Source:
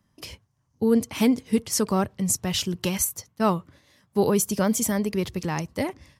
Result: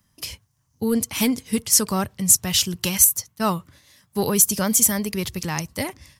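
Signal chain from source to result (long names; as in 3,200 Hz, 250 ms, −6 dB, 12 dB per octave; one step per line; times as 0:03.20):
high-shelf EQ 5,900 Hz +10.5 dB
in parallel at −5.5 dB: hard clipping −13.5 dBFS, distortion −16 dB
on the sum: parametric band 400 Hz −6.5 dB 2.4 octaves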